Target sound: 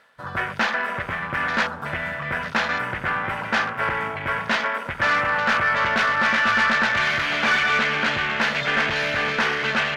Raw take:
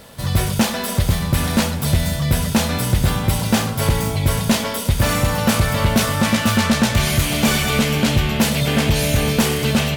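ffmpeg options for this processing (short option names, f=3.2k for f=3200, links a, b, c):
-af "highpass=f=970:p=1,aemphasis=mode=reproduction:type=75kf,afwtdn=0.0178,equalizer=f=1.6k:w=1.2:g=13,areverse,acompressor=mode=upward:threshold=-34dB:ratio=2.5,areverse,aeval=exprs='(tanh(3.55*val(0)+0.05)-tanh(0.05))/3.55':c=same"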